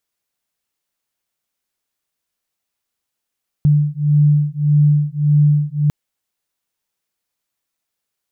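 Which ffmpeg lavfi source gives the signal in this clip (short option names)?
-f lavfi -i "aevalsrc='0.2*(sin(2*PI*147*t)+sin(2*PI*148.7*t))':d=2.25:s=44100"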